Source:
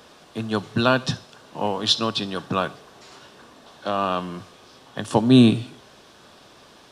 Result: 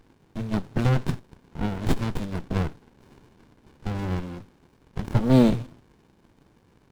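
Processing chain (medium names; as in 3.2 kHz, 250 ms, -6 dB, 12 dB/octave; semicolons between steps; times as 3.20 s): companding laws mixed up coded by A; sliding maximum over 65 samples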